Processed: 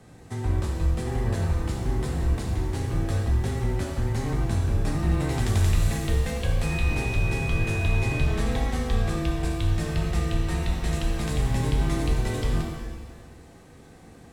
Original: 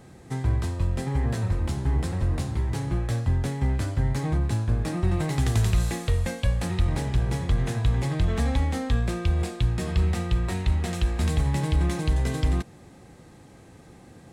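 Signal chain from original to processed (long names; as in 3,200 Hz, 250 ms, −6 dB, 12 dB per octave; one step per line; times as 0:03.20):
frequency shifter −20 Hz
0:06.62–0:08.24: steady tone 2,500 Hz −35 dBFS
reverb with rising layers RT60 1.3 s, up +7 semitones, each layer −8 dB, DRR 0.5 dB
level −2.5 dB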